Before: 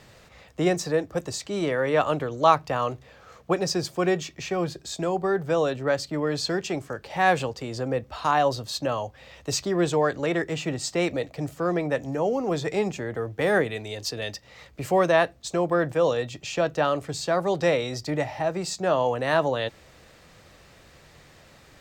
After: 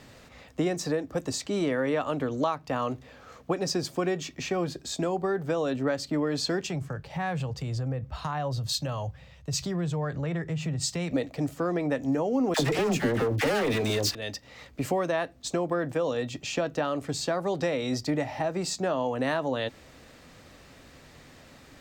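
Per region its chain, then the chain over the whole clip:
0:06.67–0:11.12: low shelf with overshoot 200 Hz +7.5 dB, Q 3 + downward compressor 5 to 1, threshold −27 dBFS + multiband upward and downward expander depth 70%
0:12.54–0:14.15: leveller curve on the samples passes 5 + all-pass dispersion lows, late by 57 ms, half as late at 870 Hz
whole clip: downward compressor 5 to 1, threshold −25 dBFS; parametric band 260 Hz +10 dB 0.32 octaves

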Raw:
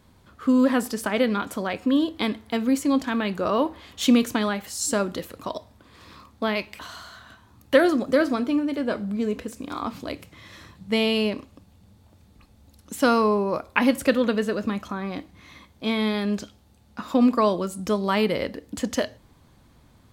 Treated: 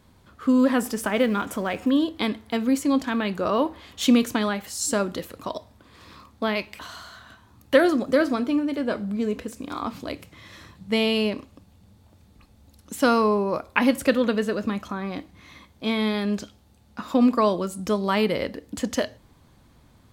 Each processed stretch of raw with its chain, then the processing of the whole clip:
0:00.78–0:01.90: mu-law and A-law mismatch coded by mu + parametric band 4,300 Hz −7 dB 0.36 octaves
whole clip: no processing

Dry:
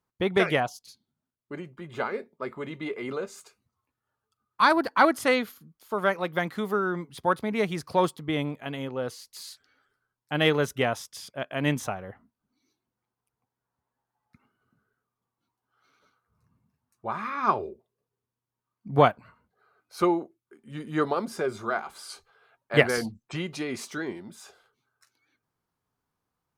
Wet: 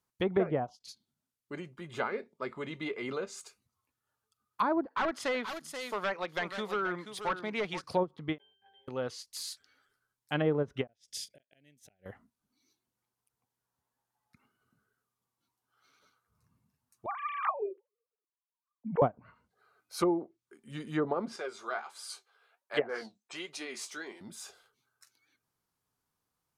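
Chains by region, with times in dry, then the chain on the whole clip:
0:04.86–0:07.84: high-pass filter 390 Hz 6 dB per octave + hard clipping −23.5 dBFS + single-tap delay 481 ms −10 dB
0:08.38–0:08.88: high-pass filter 530 Hz 24 dB per octave + centre clipping without the shift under −47 dBFS + resonances in every octave G, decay 0.59 s
0:10.87–0:12.06: gate with flip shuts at −22 dBFS, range −35 dB + Butterworth band-reject 1,100 Hz, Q 1
0:17.06–0:19.02: three sine waves on the formant tracks + low-pass that shuts in the quiet parts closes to 1,500 Hz, open at −20 dBFS + parametric band 1,100 Hz −2 dB 2.8 octaves
0:21.36–0:24.21: high-pass filter 410 Hz + flanger 1.4 Hz, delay 6.4 ms, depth 9.7 ms, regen +50%
whole clip: treble cut that deepens with the level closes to 670 Hz, closed at −20.5 dBFS; high-shelf EQ 3,100 Hz +9 dB; every ending faded ahead of time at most 480 dB per second; level −4 dB

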